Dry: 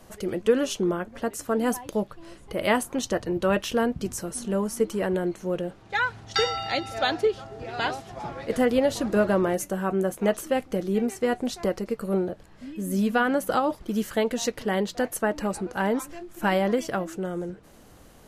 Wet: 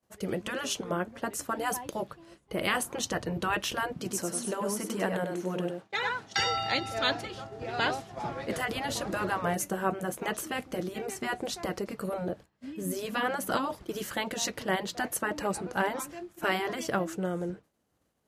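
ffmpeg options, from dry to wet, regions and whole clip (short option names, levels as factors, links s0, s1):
-filter_complex "[0:a]asettb=1/sr,asplit=3[s0][s1][s2];[s0]atrim=end=3.944[s3];[s1]atrim=start=3.94:end=6.37,asetpts=PTS-STARTPTS,afade=t=in:d=0.004:c=qsin,afade=t=out:st=2.426:d=0.004:c=qsin,highpass=170,aecho=1:1:98:0.473,atrim=end_sample=107163[s4];[s2]atrim=start=6.366[s5];[s3][s4]acrossfade=d=0.004:c1=hsin:c2=qsin[s6];[s6][s5]acrossfade=d=0.004:c1=qsin:c2=hsin,agate=range=0.0224:threshold=0.0158:ratio=3:detection=peak,highpass=68,afftfilt=real='re*lt(hypot(re,im),0.355)':imag='im*lt(hypot(re,im),0.355)':win_size=1024:overlap=0.75"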